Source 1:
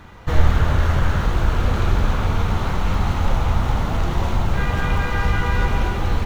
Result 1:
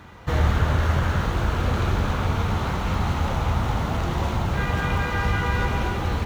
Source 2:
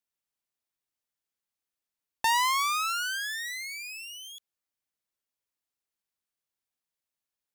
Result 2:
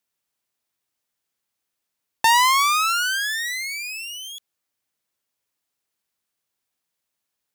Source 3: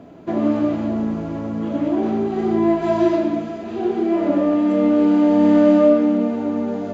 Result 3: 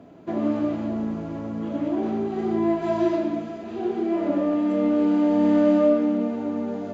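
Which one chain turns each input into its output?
high-pass filter 57 Hz
normalise the peak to −9 dBFS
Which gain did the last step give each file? −1.5, +8.5, −5.0 decibels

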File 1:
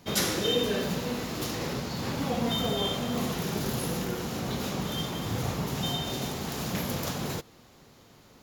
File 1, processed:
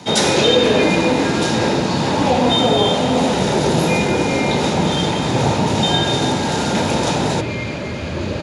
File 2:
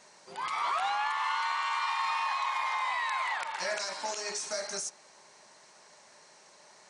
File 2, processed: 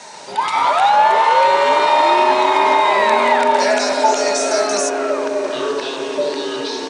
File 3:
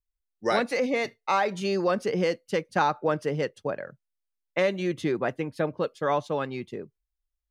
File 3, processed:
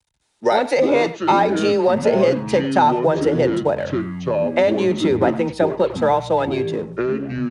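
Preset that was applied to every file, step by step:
mu-law and A-law mismatch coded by mu
notch filter 1,100 Hz, Q 7.4
hollow resonant body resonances 880/3,700 Hz, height 9 dB, ringing for 20 ms
dynamic equaliser 530 Hz, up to +6 dB, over −36 dBFS, Q 0.93
downward compressor 3 to 1, threshold −21 dBFS
downsampling to 22,050 Hz
frequency shifter +14 Hz
delay with pitch and tempo change per echo 132 ms, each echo −7 semitones, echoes 3, each echo −6 dB
high-pass filter 77 Hz
far-end echo of a speakerphone 100 ms, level −15 dB
normalise the peak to −2 dBFS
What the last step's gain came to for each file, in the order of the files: +9.5, +11.0, +6.5 decibels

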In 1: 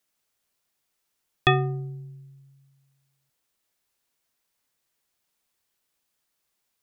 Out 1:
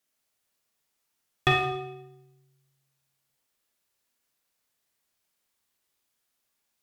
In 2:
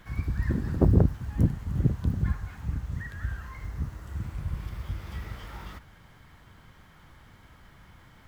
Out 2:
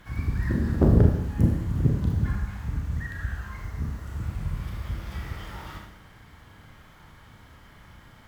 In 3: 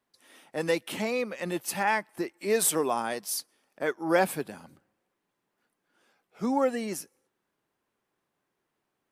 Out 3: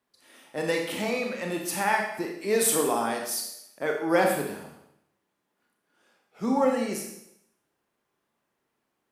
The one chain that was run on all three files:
asymmetric clip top −11 dBFS
four-comb reverb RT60 0.76 s, combs from 27 ms, DRR 1 dB
loudness normalisation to −27 LKFS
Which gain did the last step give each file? −3.0, +1.0, 0.0 decibels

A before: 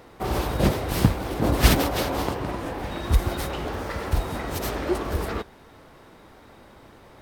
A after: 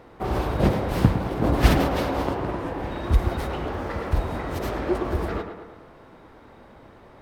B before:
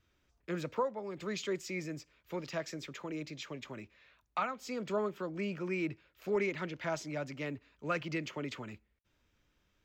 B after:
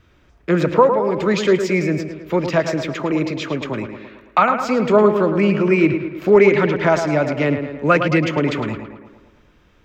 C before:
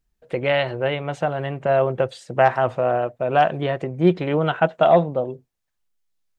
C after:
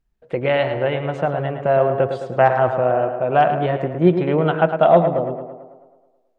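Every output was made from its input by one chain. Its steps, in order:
high-shelf EQ 3,700 Hz −12 dB
on a send: tape delay 109 ms, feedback 62%, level −7 dB, low-pass 2,800 Hz
on the sum: normalise the peak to −2 dBFS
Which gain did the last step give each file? +0.5, +20.5, +2.0 decibels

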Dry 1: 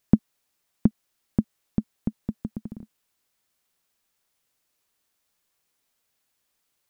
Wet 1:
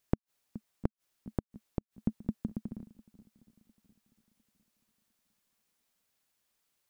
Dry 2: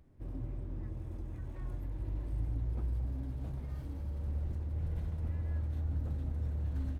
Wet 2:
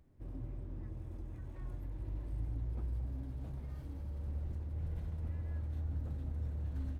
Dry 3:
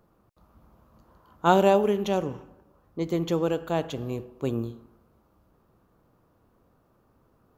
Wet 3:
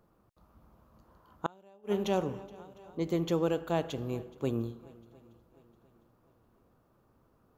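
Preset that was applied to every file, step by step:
feedback echo with a long and a short gap by turns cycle 704 ms, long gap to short 1.5 to 1, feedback 35%, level −23 dB
gate with flip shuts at −12 dBFS, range −35 dB
level −3.5 dB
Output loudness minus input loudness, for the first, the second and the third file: −10.5, −3.5, −7.5 LU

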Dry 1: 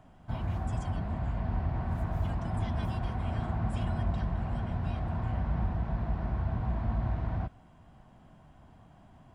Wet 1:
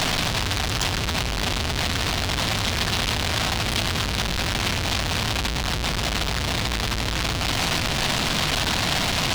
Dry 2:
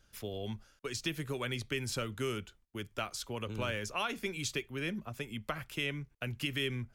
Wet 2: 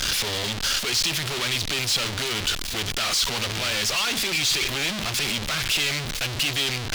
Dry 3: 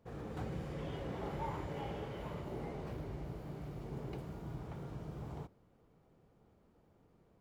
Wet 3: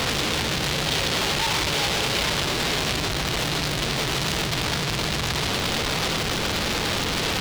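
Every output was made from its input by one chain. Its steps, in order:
sign of each sample alone
parametric band 3,900 Hz +14 dB 2.2 octaves
loudness normalisation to −23 LKFS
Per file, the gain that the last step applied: +5.5, +6.5, +16.0 decibels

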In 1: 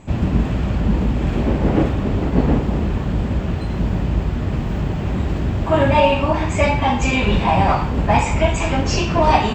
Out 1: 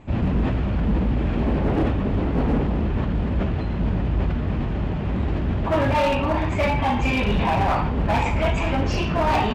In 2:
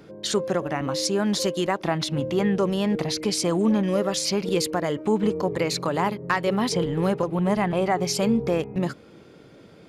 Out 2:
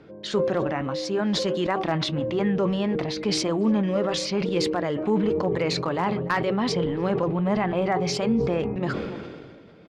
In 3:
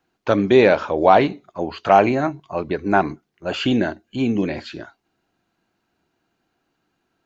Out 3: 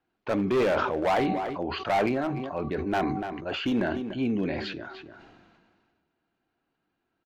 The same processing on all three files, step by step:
low-pass filter 3,600 Hz 12 dB per octave
hum removal 380 Hz, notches 3
hard clipping −13 dBFS
flanger 1.7 Hz, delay 2.4 ms, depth 2.5 ms, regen −77%
slap from a distant wall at 50 metres, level −24 dB
level that may fall only so fast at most 31 dB per second
normalise the peak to −12 dBFS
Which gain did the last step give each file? +1.0, +3.0, −3.0 decibels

